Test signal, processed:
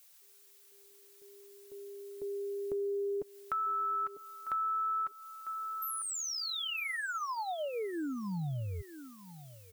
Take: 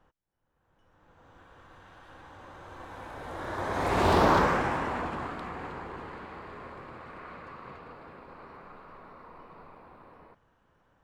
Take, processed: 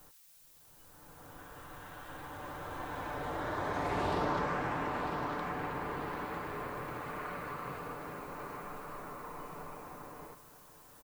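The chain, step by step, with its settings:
high-shelf EQ 5,000 Hz −4 dB
background noise blue −65 dBFS
comb filter 6.8 ms, depth 39%
feedback echo with a high-pass in the loop 949 ms, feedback 21%, high-pass 220 Hz, level −15 dB
downward compressor 3 to 1, threshold −39 dBFS
level +4 dB

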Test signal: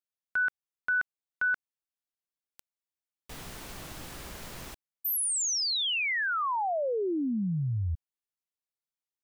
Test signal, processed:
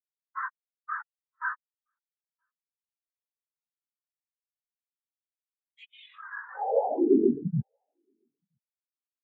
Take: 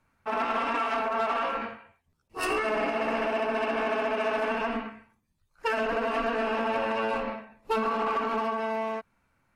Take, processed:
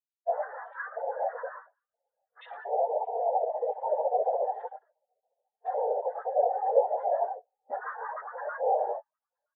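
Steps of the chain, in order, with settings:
three sine waves on the formant tracks
high-pass filter 320 Hz 12 dB per octave
in parallel at −2.5 dB: downward compressor, threshold −34 dBFS
on the sum: leveller curve on the samples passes 2
speech leveller within 3 dB 0.5 s
cochlear-implant simulation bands 6
hard clipping −19 dBFS
on a send: single-tap delay 971 ms −13 dB
on the sum: every bin expanded away from the loudest bin 4 to 1
level +6.5 dB

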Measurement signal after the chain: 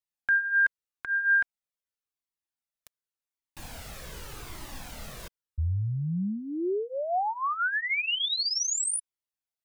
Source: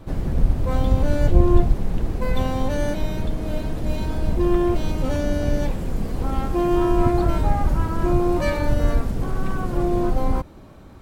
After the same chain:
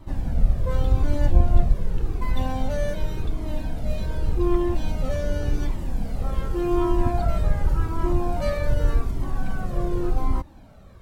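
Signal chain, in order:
flanger whose copies keep moving one way falling 0.87 Hz

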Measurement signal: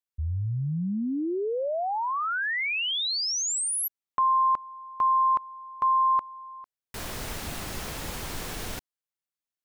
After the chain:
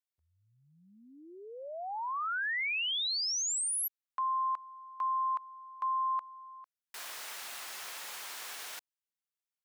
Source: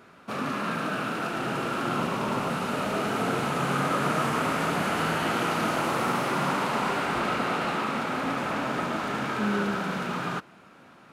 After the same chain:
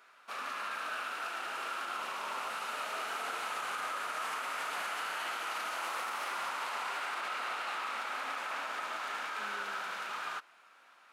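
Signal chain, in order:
high-pass filter 980 Hz 12 dB per octave
brickwall limiter −23.5 dBFS
level −4.5 dB

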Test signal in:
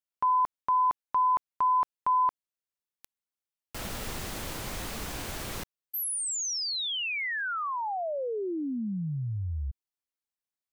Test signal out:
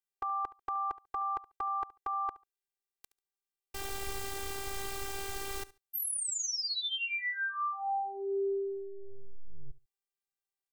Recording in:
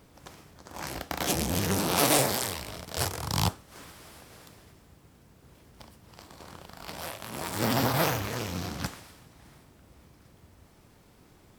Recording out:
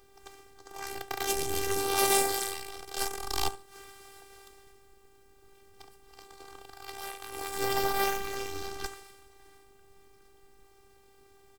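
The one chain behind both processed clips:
phases set to zero 394 Hz
repeating echo 71 ms, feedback 19%, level −18.5 dB

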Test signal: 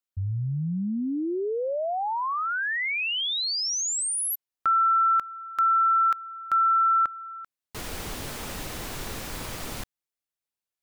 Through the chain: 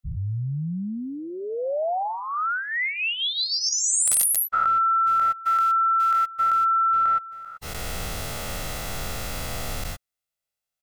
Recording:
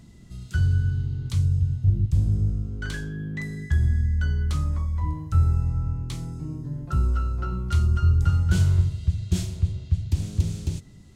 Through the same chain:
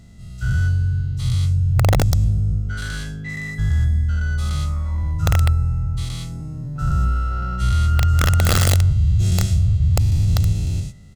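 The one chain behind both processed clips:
every bin's largest magnitude spread in time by 240 ms
wrap-around overflow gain 8.5 dB
comb filter 1.5 ms, depth 48%
level −3 dB

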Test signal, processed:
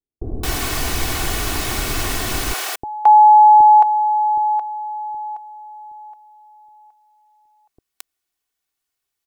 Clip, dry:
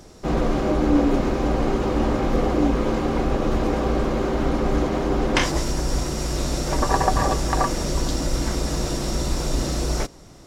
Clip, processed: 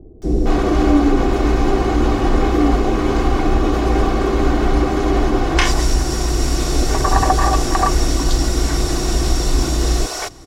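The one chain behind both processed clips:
comb filter 2.7 ms, depth 50%
in parallel at −1 dB: brickwall limiter −11.5 dBFS
on the sum: multiband delay without the direct sound lows, highs 220 ms, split 490 Hz

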